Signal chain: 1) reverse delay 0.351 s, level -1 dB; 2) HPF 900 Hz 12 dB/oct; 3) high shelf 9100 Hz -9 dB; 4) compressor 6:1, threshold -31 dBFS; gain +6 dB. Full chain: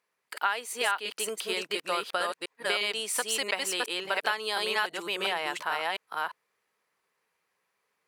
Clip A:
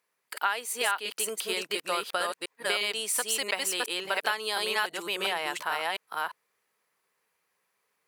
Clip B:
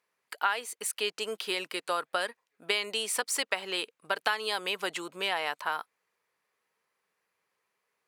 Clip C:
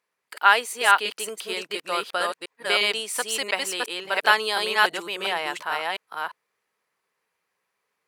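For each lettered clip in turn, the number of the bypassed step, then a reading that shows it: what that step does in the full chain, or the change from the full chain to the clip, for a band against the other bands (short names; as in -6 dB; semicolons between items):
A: 3, 8 kHz band +3.0 dB; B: 1, crest factor change +2.5 dB; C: 4, mean gain reduction 3.5 dB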